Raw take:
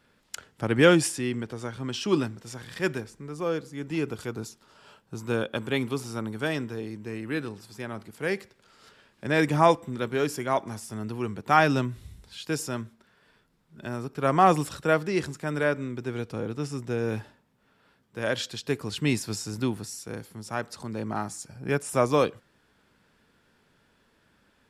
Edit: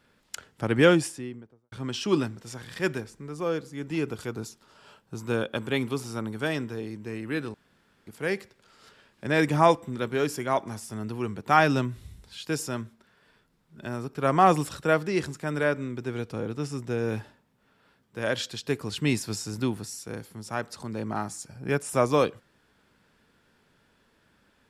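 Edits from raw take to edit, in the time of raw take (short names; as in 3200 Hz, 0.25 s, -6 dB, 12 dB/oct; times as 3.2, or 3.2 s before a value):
0.72–1.72 studio fade out
7.54–8.07 room tone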